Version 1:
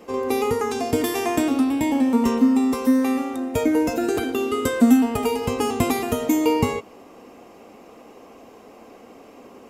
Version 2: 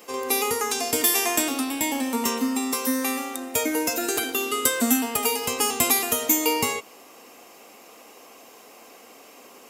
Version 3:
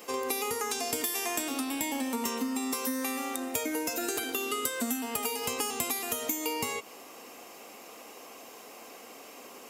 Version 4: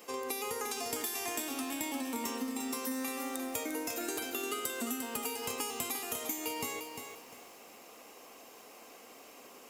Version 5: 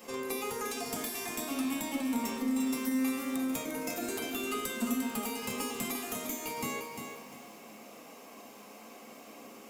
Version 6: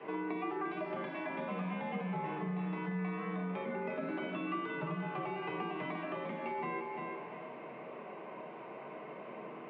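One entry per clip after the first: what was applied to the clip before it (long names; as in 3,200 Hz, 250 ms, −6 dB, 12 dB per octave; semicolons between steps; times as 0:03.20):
spectral tilt +4 dB per octave; level −1 dB
downward compressor 6 to 1, threshold −29 dBFS, peak gain reduction 13.5 dB
feedback echo at a low word length 350 ms, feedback 35%, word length 8 bits, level −6.5 dB; level −5.5 dB
one-sided soft clipper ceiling −30 dBFS; echo ahead of the sound 57 ms −15.5 dB; on a send at −1.5 dB: convolution reverb RT60 0.60 s, pre-delay 3 ms
three-way crossover with the lows and the highs turned down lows −23 dB, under 260 Hz, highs −13 dB, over 2,100 Hz; single-sideband voice off tune −78 Hz 250–3,200 Hz; downward compressor 2 to 1, threshold −45 dBFS, peak gain reduction 7 dB; level +6.5 dB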